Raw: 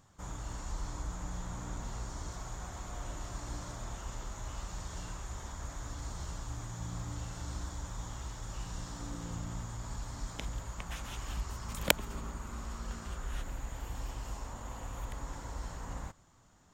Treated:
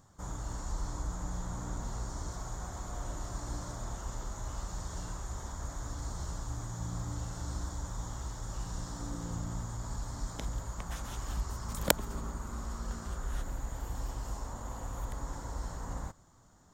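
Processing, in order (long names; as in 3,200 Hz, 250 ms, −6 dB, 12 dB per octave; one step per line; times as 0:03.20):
parametric band 2,600 Hz −10 dB 0.83 octaves
level +2.5 dB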